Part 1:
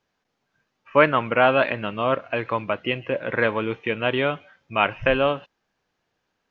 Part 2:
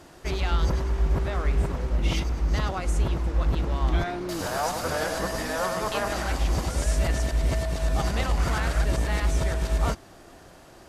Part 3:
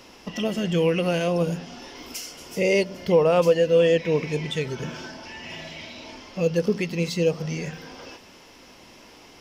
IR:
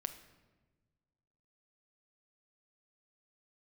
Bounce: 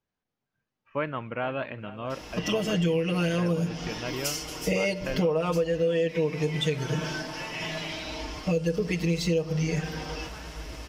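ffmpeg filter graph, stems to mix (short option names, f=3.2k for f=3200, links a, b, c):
-filter_complex "[0:a]lowshelf=f=230:g=10.5,volume=-14dB,asplit=3[a][b][c];[b]volume=-17.5dB[d];[1:a]aeval=exprs='sgn(val(0))*max(abs(val(0))-0.00299,0)':c=same,adelay=1800,volume=-16.5dB[e];[2:a]aecho=1:1:6.5:0.98,adelay=2100,volume=-2.5dB,asplit=2[f][g];[g]volume=-3.5dB[h];[c]apad=whole_len=559571[i];[e][i]sidechaincompress=threshold=-44dB:ratio=8:attack=5.1:release=183[j];[3:a]atrim=start_sample=2205[k];[h][k]afir=irnorm=-1:irlink=0[l];[d]aecho=0:1:463:1[m];[a][j][f][l][m]amix=inputs=5:normalize=0,acompressor=threshold=-23dB:ratio=6"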